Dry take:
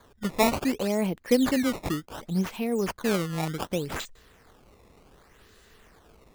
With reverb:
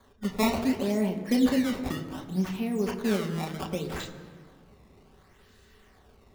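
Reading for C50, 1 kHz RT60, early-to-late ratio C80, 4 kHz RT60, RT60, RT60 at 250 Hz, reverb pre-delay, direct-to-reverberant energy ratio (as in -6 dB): 9.5 dB, 1.7 s, 10.5 dB, 1.2 s, 1.8 s, 2.4 s, 3 ms, 1.0 dB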